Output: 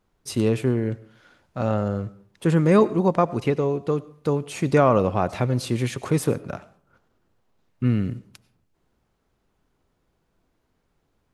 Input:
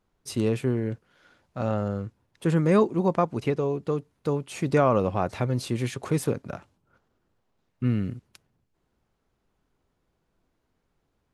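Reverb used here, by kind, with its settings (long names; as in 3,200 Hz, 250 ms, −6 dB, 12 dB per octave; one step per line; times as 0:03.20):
comb and all-pass reverb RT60 0.5 s, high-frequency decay 0.6×, pre-delay 55 ms, DRR 18.5 dB
level +3.5 dB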